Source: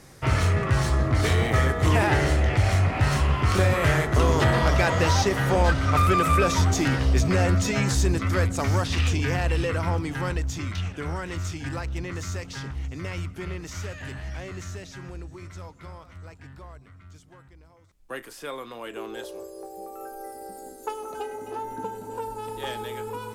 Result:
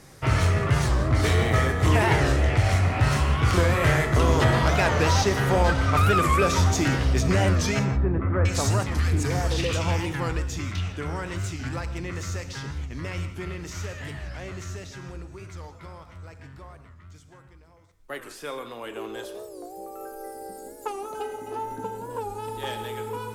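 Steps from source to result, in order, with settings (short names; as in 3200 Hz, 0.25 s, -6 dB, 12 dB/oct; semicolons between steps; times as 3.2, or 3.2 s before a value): 7.79–10.06 bands offset in time lows, highs 0.66 s, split 1700 Hz; non-linear reverb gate 0.2 s flat, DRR 9 dB; record warp 45 rpm, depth 160 cents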